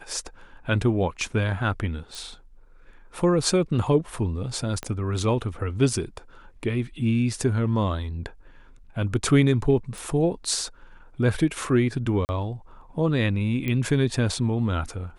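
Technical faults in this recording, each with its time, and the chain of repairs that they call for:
2.15 s: pop
4.83 s: pop -16 dBFS
9.98 s: pop
12.25–12.29 s: dropout 39 ms
13.68 s: pop -15 dBFS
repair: de-click; interpolate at 12.25 s, 39 ms

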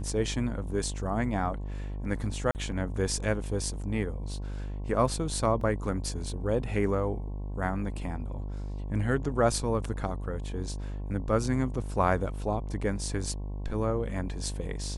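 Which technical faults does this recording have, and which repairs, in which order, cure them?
buzz 50 Hz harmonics 22 -35 dBFS
2.51–2.55 s: dropout 39 ms
5.61 s: dropout 2.9 ms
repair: de-hum 50 Hz, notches 22; interpolate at 2.51 s, 39 ms; interpolate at 5.61 s, 2.9 ms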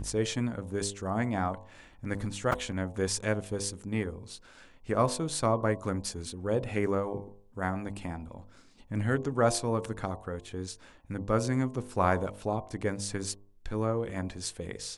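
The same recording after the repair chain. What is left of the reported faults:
nothing left

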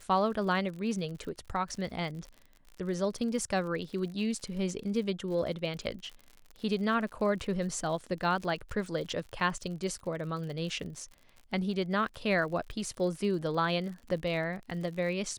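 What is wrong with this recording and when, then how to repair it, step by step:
crackle 60 per s -40 dBFS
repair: de-click

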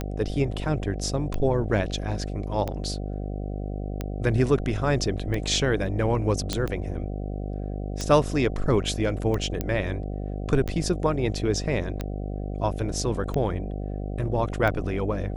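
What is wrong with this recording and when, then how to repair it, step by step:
buzz 50 Hz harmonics 15 -31 dBFS
tick 45 rpm -16 dBFS
6.53 s: pop -11 dBFS
9.61 s: pop -12 dBFS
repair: de-click; de-hum 50 Hz, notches 15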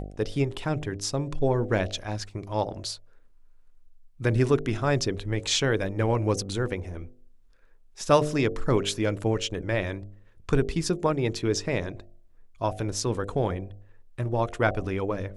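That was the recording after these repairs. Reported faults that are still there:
nothing left

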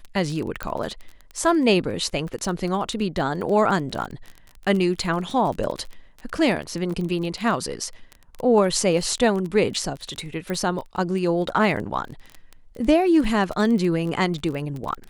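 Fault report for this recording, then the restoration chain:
crackle 22 per s -28 dBFS
0.63 s: pop -14 dBFS
10.50 s: pop -17 dBFS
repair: de-click

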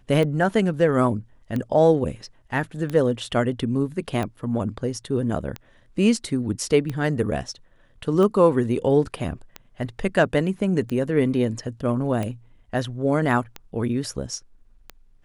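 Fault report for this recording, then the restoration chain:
tick 45 rpm -16 dBFS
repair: de-click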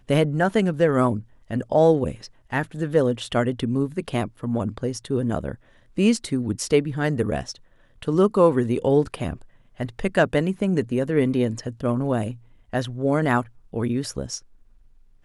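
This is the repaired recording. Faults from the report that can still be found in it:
nothing left

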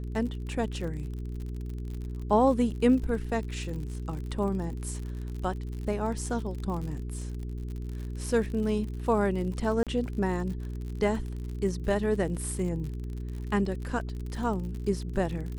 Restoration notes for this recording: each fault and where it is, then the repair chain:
crackle 57 per s -36 dBFS
hum 60 Hz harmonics 7 -35 dBFS
9.83–9.87 s: dropout 37 ms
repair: de-click; de-hum 60 Hz, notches 7; interpolate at 9.83 s, 37 ms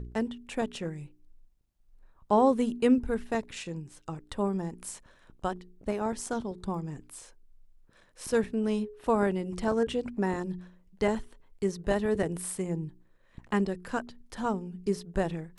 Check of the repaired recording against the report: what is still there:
nothing left

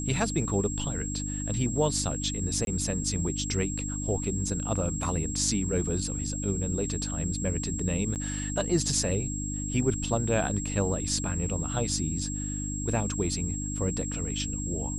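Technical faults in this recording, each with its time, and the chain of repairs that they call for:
hum 50 Hz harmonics 6 -34 dBFS
whine 7.6 kHz -35 dBFS
2.65–2.67 s: dropout 22 ms
8.15–8.16 s: dropout 8.1 ms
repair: band-stop 7.6 kHz, Q 30; de-hum 50 Hz, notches 6; interpolate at 2.65 s, 22 ms; interpolate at 8.15 s, 8.1 ms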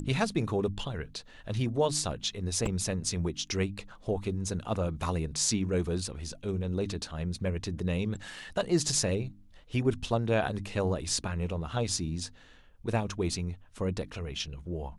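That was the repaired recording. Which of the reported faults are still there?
nothing left

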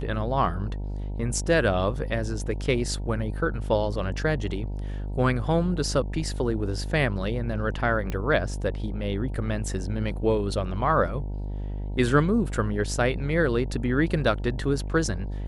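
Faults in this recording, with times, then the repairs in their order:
buzz 50 Hz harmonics 19 -31 dBFS
8.10 s: pop -17 dBFS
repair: de-click; de-hum 50 Hz, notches 19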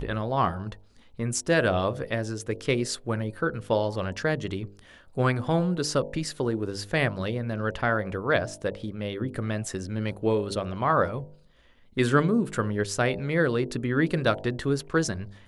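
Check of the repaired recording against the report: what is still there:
nothing left

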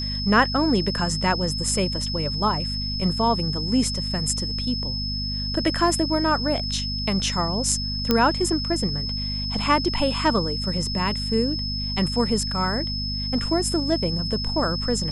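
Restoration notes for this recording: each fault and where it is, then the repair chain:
hum 50 Hz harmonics 5 -30 dBFS
whine 5.2 kHz -28 dBFS
8.11 s: pop -5 dBFS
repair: de-click; de-hum 50 Hz, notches 5; band-stop 5.2 kHz, Q 30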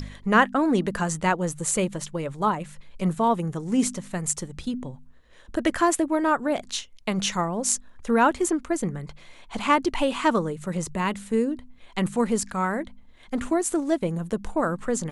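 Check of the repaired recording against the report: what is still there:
nothing left

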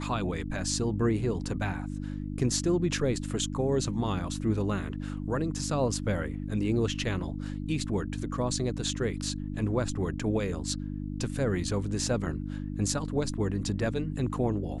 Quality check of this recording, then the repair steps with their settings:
hum 50 Hz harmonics 6 -35 dBFS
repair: de-hum 50 Hz, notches 6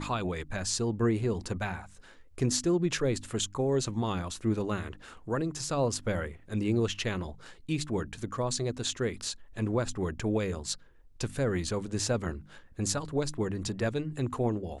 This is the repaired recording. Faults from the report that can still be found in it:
nothing left

